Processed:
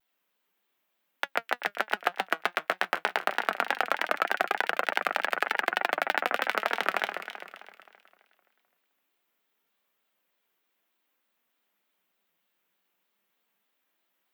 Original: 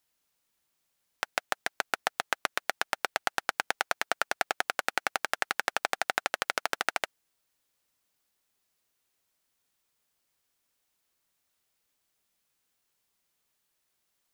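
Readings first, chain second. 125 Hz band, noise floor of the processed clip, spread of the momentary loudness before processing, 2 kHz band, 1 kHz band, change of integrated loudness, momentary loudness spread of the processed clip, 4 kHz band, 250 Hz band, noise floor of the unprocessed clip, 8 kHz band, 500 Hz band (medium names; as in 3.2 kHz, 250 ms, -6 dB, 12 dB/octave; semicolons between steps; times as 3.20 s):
no reading, -78 dBFS, 3 LU, +3.0 dB, +3.5 dB, +2.5 dB, 5 LU, 0.0 dB, +4.5 dB, -78 dBFS, -9.0 dB, +4.5 dB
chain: steep high-pass 170 Hz 96 dB/octave; high-order bell 7.2 kHz -11.5 dB; in parallel at -6.5 dB: saturation -17 dBFS, distortion -11 dB; on the sum: flange 0.2 Hz, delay 1.4 ms, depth 4.7 ms, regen +72%; on a send: echo whose repeats swap between lows and highs 130 ms, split 2.2 kHz, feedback 66%, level -5 dB; on the sum: vibrato with a chosen wave square 3.3 Hz, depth 100 cents; trim +4 dB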